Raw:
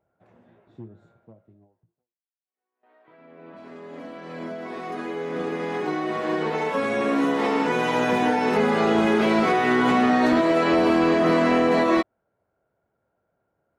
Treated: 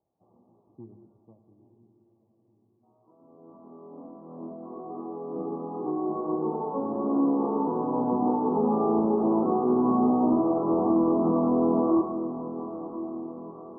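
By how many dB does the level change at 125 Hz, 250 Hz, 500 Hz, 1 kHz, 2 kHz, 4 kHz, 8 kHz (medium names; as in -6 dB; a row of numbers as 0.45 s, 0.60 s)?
-3.5 dB, -1.5 dB, -4.5 dB, -6.0 dB, under -40 dB, under -40 dB, under -35 dB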